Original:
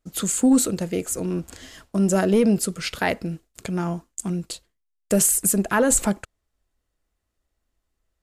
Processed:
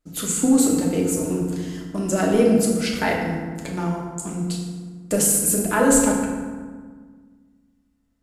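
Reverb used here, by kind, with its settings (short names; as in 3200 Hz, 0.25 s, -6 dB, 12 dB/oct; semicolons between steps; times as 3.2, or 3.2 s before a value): FDN reverb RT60 1.6 s, low-frequency decay 1.45×, high-frequency decay 0.55×, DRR -2.5 dB; gain -2.5 dB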